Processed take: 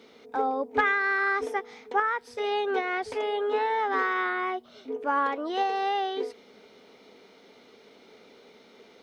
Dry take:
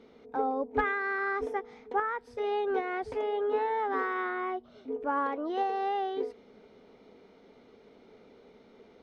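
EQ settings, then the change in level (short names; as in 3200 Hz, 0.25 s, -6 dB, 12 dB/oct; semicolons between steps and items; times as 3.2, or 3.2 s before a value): HPF 200 Hz 6 dB/oct; high shelf 2000 Hz +12 dB; +2.0 dB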